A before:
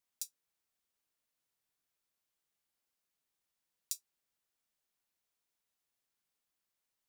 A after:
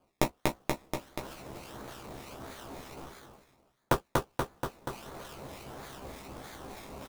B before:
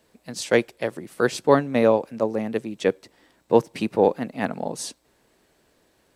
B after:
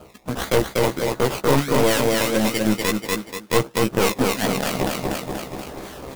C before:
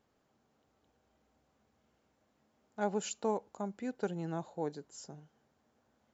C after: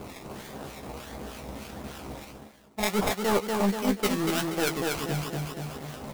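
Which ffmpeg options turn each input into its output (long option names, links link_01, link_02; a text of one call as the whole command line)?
ffmpeg -i in.wav -filter_complex "[0:a]acrusher=samples=23:mix=1:aa=0.000001:lfo=1:lforange=13.8:lforate=1.5,acrossover=split=1400[link_01][link_02];[link_01]aeval=exprs='val(0)*(1-0.7/2+0.7/2*cos(2*PI*3.3*n/s))':channel_layout=same[link_03];[link_02]aeval=exprs='val(0)*(1-0.7/2-0.7/2*cos(2*PI*3.3*n/s))':channel_layout=same[link_04];[link_03][link_04]amix=inputs=2:normalize=0,aecho=1:1:240|480|720|960:0.501|0.185|0.0686|0.0254,areverse,acompressor=mode=upward:threshold=-27dB:ratio=2.5,areverse,acrusher=bits=3:mode=log:mix=0:aa=0.000001,asplit=2[link_05][link_06];[link_06]adelay=15,volume=-6dB[link_07];[link_05][link_07]amix=inputs=2:normalize=0,aeval=exprs='0.891*(cos(1*acos(clip(val(0)/0.891,-1,1)))-cos(1*PI/2))+0.126*(cos(8*acos(clip(val(0)/0.891,-1,1)))-cos(8*PI/2))':channel_layout=same,acontrast=75,alimiter=level_in=8dB:limit=-1dB:release=50:level=0:latency=1,volume=-6.5dB" out.wav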